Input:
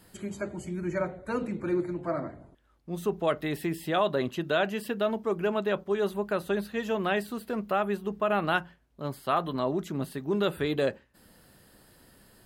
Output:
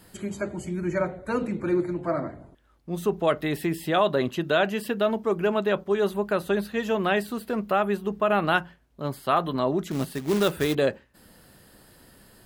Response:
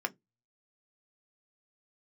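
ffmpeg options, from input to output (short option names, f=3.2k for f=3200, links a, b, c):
-filter_complex "[0:a]asettb=1/sr,asplit=3[a][b][c];[a]atrim=end=9.914[d];[b]atrim=start=9.91:end=10.75,asetpts=PTS-STARTPTS,afade=t=in:d=0.004:c=qsin,afade=t=out:st=0.836:d=0.004:c=qsin,acrusher=bits=3:mode=log:mix=0:aa=0.000001[e];[c]atrim=start=10.746[f];[d][e]acrossfade=d=0.004:c1=hsin:c2=qsin[g];[g][f]acrossfade=d=0.004:c1=qsin:c2=hsin,volume=4dB"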